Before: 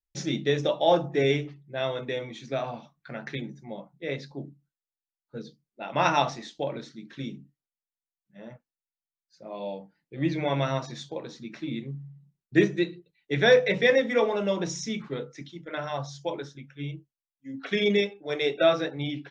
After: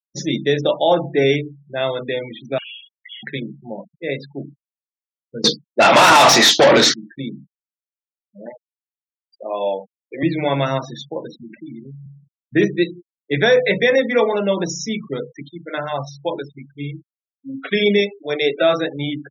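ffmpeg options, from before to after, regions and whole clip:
ffmpeg -i in.wav -filter_complex "[0:a]asettb=1/sr,asplit=3[link_01][link_02][link_03];[link_01]atrim=end=2.584[link_04];[link_02]atrim=start=2.58:end=3.23,asetpts=PTS-STARTPTS,afade=type=in:duration=0.004:curve=qsin,afade=type=out:start_time=0.646:duration=0.004:curve=qsin,acompressor=threshold=-39dB:ratio=2.5:attack=3.2:release=140:knee=1:detection=peak,aeval=exprs='0.0141*(abs(mod(val(0)/0.0141+3,4)-2)-1)':channel_layout=same,lowpass=frequency=3000:width_type=q:width=0.5098,lowpass=frequency=3000:width_type=q:width=0.6013,lowpass=frequency=3000:width_type=q:width=0.9,lowpass=frequency=3000:width_type=q:width=2.563,afreqshift=-3500[link_05];[link_03]atrim=start=3.226[link_06];[link_04][link_05]acrossfade=duration=0.004:curve1=hsin:curve2=qsin[link_07];[link_07][link_06]acrossfade=duration=0.004:curve1=qsin:curve2=hsin,asettb=1/sr,asplit=3[link_08][link_09][link_10];[link_08]atrim=end=5.444[link_11];[link_09]atrim=start=5.44:end=6.94,asetpts=PTS-STARTPTS,afade=type=in:duration=0.004:curve=qsin,afade=type=out:start_time=1.496:duration=0.004:curve=qsin,aemphasis=mode=production:type=cd,asplit=2[link_12][link_13];[link_13]highpass=frequency=720:poles=1,volume=38dB,asoftclip=type=tanh:threshold=-7dB[link_14];[link_12][link_14]amix=inputs=2:normalize=0,lowpass=frequency=4100:poles=1,volume=-6dB[link_15];[link_10]atrim=start=6.936[link_16];[link_11][link_15]acrossfade=duration=0.004:curve1=hsin:curve2=qsin[link_17];[link_17][link_16]acrossfade=duration=0.004:curve1=qsin:curve2=hsin,asettb=1/sr,asplit=3[link_18][link_19][link_20];[link_18]atrim=end=8.464[link_21];[link_19]atrim=start=8.46:end=10.23,asetpts=PTS-STARTPTS,afade=type=in:duration=0.004:curve=qsin,afade=type=out:start_time=1.766:duration=0.004:curve=qsin,highpass=410,acontrast=74,bandreject=frequency=3800:width=9.6[link_22];[link_20]atrim=start=10.226[link_23];[link_21][link_22]acrossfade=duration=0.004:curve1=hsin:curve2=qsin[link_24];[link_24][link_23]acrossfade=duration=0.004:curve1=qsin:curve2=hsin,asettb=1/sr,asplit=3[link_25][link_26][link_27];[link_25]atrim=end=11.414[link_28];[link_26]atrim=start=11.41:end=12.06,asetpts=PTS-STARTPTS,afade=type=in:duration=0.004:curve=qsin,afade=type=out:start_time=0.646:duration=0.004:curve=qsin,highpass=frequency=80:width=0.5412,highpass=frequency=80:width=1.3066,acompressor=threshold=-41dB:ratio=3:attack=3.2:release=140:knee=1:detection=peak[link_29];[link_27]atrim=start=12.056[link_30];[link_28][link_29]acrossfade=duration=0.004:curve1=hsin:curve2=qsin[link_31];[link_31][link_30]acrossfade=duration=0.004:curve1=qsin:curve2=hsin,afftfilt=real='re*gte(hypot(re,im),0.0141)':imag='im*gte(hypot(re,im),0.0141)':win_size=1024:overlap=0.75,highpass=130,alimiter=level_in=12.5dB:limit=-1dB:release=50:level=0:latency=1,volume=-4.5dB" out.wav

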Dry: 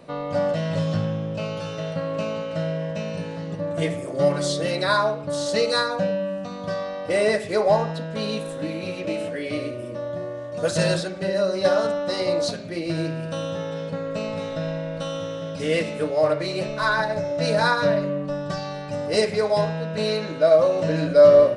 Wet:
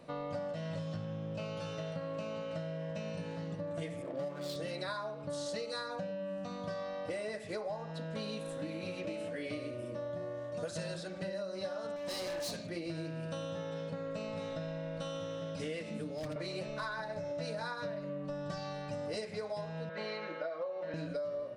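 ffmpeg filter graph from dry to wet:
ffmpeg -i in.wav -filter_complex "[0:a]asettb=1/sr,asplit=3[link_01][link_02][link_03];[link_01]atrim=end=4.024[link_04];[link_02]atrim=start=4.02:end=4.56,asetpts=PTS-STARTPTS,afade=type=in:duration=0.004:curve=qsin,afade=type=out:start_time=0.536:duration=0.004:curve=qsin,highpass=150,bandreject=frequency=6300:width=5.3,adynamicsmooth=sensitivity=7.5:basefreq=810[link_05];[link_03]atrim=start=4.556[link_06];[link_04][link_05]acrossfade=duration=0.004:curve1=hsin:curve2=qsin[link_07];[link_07][link_06]acrossfade=duration=0.004:curve1=qsin:curve2=hsin,asettb=1/sr,asplit=3[link_08][link_09][link_10];[link_08]atrim=end=11.964[link_11];[link_09]atrim=start=11.96:end=12.67,asetpts=PTS-STARTPTS,afade=type=in:duration=0.004:curve=qsin,afade=type=out:start_time=0.706:duration=0.004:curve=qsin,aemphasis=mode=production:type=cd,asoftclip=type=hard:threshold=-26.5dB,asuperstop=centerf=1400:order=4:qfactor=7.6[link_12];[link_10]atrim=start=12.666[link_13];[link_11][link_12]acrossfade=duration=0.004:curve1=hsin:curve2=qsin[link_14];[link_14][link_13]acrossfade=duration=0.004:curve1=qsin:curve2=hsin,asettb=1/sr,asplit=3[link_15][link_16][link_17];[link_15]atrim=end=15.904[link_18];[link_16]atrim=start=15.9:end=16.36,asetpts=PTS-STARTPTS,afade=type=in:duration=0.004:curve=qsin,afade=type=out:start_time=0.456:duration=0.004:curve=qsin,aeval=exprs='0.2*(abs(mod(val(0)/0.2+3,4)-2)-1)':channel_layout=same,acrossover=split=230|3000[link_19][link_20][link_21];[link_20]acompressor=threshold=-31dB:ratio=6:attack=3.2:release=140:knee=2.83:detection=peak[link_22];[link_19][link_22][link_21]amix=inputs=3:normalize=0,equalizer=frequency=230:width_type=o:width=0.91:gain=12[link_23];[link_17]atrim=start=16.356[link_24];[link_18][link_23]acrossfade=duration=0.004:curve1=hsin:curve2=qsin[link_25];[link_25][link_24]acrossfade=duration=0.004:curve1=qsin:curve2=hsin,asettb=1/sr,asplit=3[link_26][link_27][link_28];[link_26]atrim=end=19.894[link_29];[link_27]atrim=start=19.89:end=20.94,asetpts=PTS-STARTPTS,afade=type=in:duration=0.004:curve=qsin,afade=type=out:start_time=1.046:duration=0.004:curve=qsin,highpass=440,lowpass=2600,aecho=1:1:5.6:0.93,atrim=end_sample=46305[link_30];[link_28]atrim=start=20.936[link_31];[link_29][link_30]acrossfade=duration=0.004:curve1=hsin:curve2=qsin[link_32];[link_32][link_31]acrossfade=duration=0.004:curve1=qsin:curve2=hsin,bandreject=frequency=400:width=12,acompressor=threshold=-28dB:ratio=16,volume=-7.5dB" out.wav

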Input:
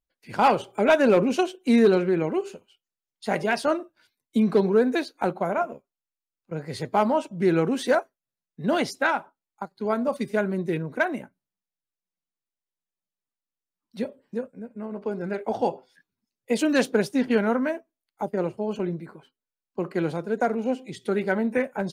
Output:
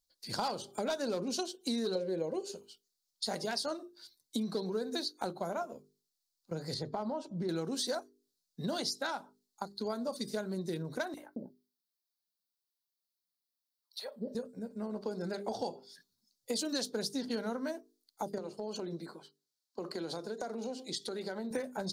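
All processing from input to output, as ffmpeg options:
ffmpeg -i in.wav -filter_complex "[0:a]asettb=1/sr,asplit=3[link_01][link_02][link_03];[link_01]atrim=end=1.954[link_04];[link_02]atrim=start=1.95:end=2.52,asetpts=PTS-STARTPTS,afade=type=in:duration=0.004:curve=qsin,afade=type=out:start_time=0.566:duration=0.004:curve=qsin,equalizer=frequency=530:width=4:gain=15,bandreject=frequency=1300:width=5.8[link_05];[link_03]atrim=start=2.516[link_06];[link_04][link_05]acrossfade=duration=0.004:curve1=hsin:curve2=qsin[link_07];[link_07][link_06]acrossfade=duration=0.004:curve1=qsin:curve2=hsin,asettb=1/sr,asplit=3[link_08][link_09][link_10];[link_08]atrim=end=6.744[link_11];[link_09]atrim=start=6.74:end=7.49,asetpts=PTS-STARTPTS,afade=type=in:duration=0.004:curve=qsin,afade=type=out:start_time=0.746:duration=0.004:curve=qsin,lowpass=frequency=1200:poles=1,acompressor=threshold=-24dB:ratio=2.5:attack=3.2:release=140:knee=1:detection=peak[link_12];[link_10]atrim=start=7.486[link_13];[link_11][link_12]acrossfade=duration=0.004:curve1=hsin:curve2=qsin[link_14];[link_14][link_13]acrossfade=duration=0.004:curve1=qsin:curve2=hsin,asettb=1/sr,asplit=3[link_15][link_16][link_17];[link_15]atrim=end=11.144[link_18];[link_16]atrim=start=11.14:end=14.35,asetpts=PTS-STARTPTS,afade=type=in:duration=0.004:curve=qsin,afade=type=out:start_time=3.206:duration=0.004:curve=qsin,highpass=frequency=280:poles=1,equalizer=frequency=7000:width_type=o:width=1.1:gain=-10,acrossover=split=590|2500[link_19][link_20][link_21];[link_20]adelay=30[link_22];[link_19]adelay=220[link_23];[link_23][link_22][link_21]amix=inputs=3:normalize=0,atrim=end_sample=141561[link_24];[link_17]atrim=start=14.346[link_25];[link_18][link_24]acrossfade=duration=0.004:curve1=hsin:curve2=qsin[link_26];[link_26][link_25]acrossfade=duration=0.004:curve1=qsin:curve2=hsin,asettb=1/sr,asplit=3[link_27][link_28][link_29];[link_27]atrim=end=18.384[link_30];[link_28]atrim=start=18.38:end=21.51,asetpts=PTS-STARTPTS,afade=type=in:duration=0.004:curve=qsin,afade=type=out:start_time=3.126:duration=0.004:curve=qsin,highpass=240,highshelf=frequency=7800:gain=-6.5,acompressor=threshold=-32dB:ratio=4:attack=3.2:release=140:knee=1:detection=peak[link_31];[link_29]atrim=start=21.506[link_32];[link_30][link_31]acrossfade=duration=0.004:curve1=hsin:curve2=qsin[link_33];[link_33][link_32]acrossfade=duration=0.004:curve1=qsin:curve2=hsin,highshelf=frequency=3300:width_type=q:width=3:gain=10,bandreject=frequency=50:width_type=h:width=6,bandreject=frequency=100:width_type=h:width=6,bandreject=frequency=150:width_type=h:width=6,bandreject=frequency=200:width_type=h:width=6,bandreject=frequency=250:width_type=h:width=6,bandreject=frequency=300:width_type=h:width=6,bandreject=frequency=350:width_type=h:width=6,bandreject=frequency=400:width_type=h:width=6,bandreject=frequency=450:width_type=h:width=6,acompressor=threshold=-33dB:ratio=4,volume=-1.5dB" out.wav

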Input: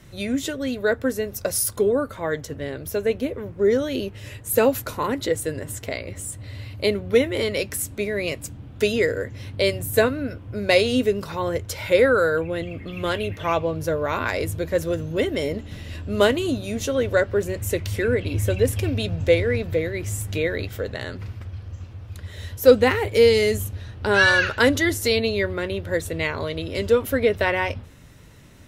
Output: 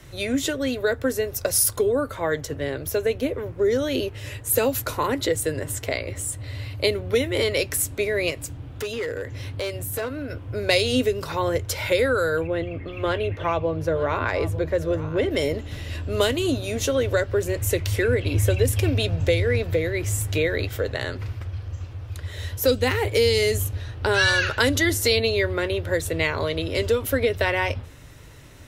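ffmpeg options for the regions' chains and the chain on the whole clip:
ffmpeg -i in.wav -filter_complex "[0:a]asettb=1/sr,asplit=3[link_01][link_02][link_03];[link_01]atrim=end=8.304[link_04];[link_02]atrim=start=8.3:end=10.3,asetpts=PTS-STARTPTS,afade=type=in:duration=0.004:curve=qsin,afade=type=out:start_time=1.996:duration=0.004:curve=qsin,acompressor=threshold=-31dB:ratio=2.5:attack=3.2:release=140:knee=1:detection=peak,asoftclip=type=hard:threshold=-26dB[link_05];[link_03]atrim=start=10.296[link_06];[link_04][link_05]acrossfade=duration=0.004:curve1=hsin:curve2=qsin[link_07];[link_07][link_06]acrossfade=duration=0.004:curve1=qsin:curve2=hsin,asettb=1/sr,asplit=3[link_08][link_09][link_10];[link_08]atrim=end=12.474[link_11];[link_09]atrim=start=12.47:end=15.31,asetpts=PTS-STARTPTS,afade=type=in:duration=0.004:curve=qsin,afade=type=out:start_time=2.836:duration=0.004:curve=qsin,lowpass=frequency=1800:poles=1,bandreject=frequency=60:width_type=h:width=6,bandreject=frequency=120:width_type=h:width=6,bandreject=frequency=180:width_type=h:width=6,bandreject=frequency=240:width_type=h:width=6,bandreject=frequency=300:width_type=h:width=6,aecho=1:1:900:0.141,atrim=end_sample=125244[link_12];[link_10]atrim=start=15.306[link_13];[link_11][link_12]acrossfade=duration=0.004:curve1=hsin:curve2=qsin[link_14];[link_14][link_13]acrossfade=duration=0.004:curve1=qsin:curve2=hsin,equalizer=frequency=200:width=3.8:gain=-14,acrossover=split=230|3000[link_15][link_16][link_17];[link_16]acompressor=threshold=-23dB:ratio=6[link_18];[link_15][link_18][link_17]amix=inputs=3:normalize=0,volume=3.5dB" out.wav

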